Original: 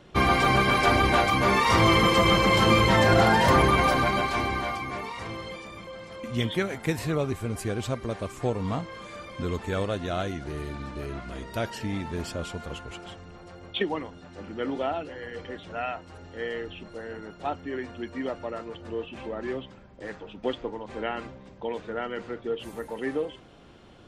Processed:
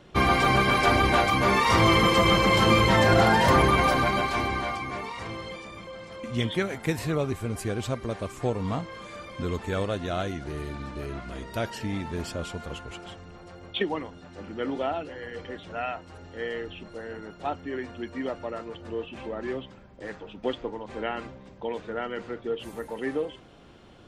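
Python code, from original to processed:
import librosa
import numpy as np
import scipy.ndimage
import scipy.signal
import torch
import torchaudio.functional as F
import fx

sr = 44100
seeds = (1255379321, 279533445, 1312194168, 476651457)

y = fx.lowpass(x, sr, hz=11000.0, slope=24, at=(4.48, 6.62))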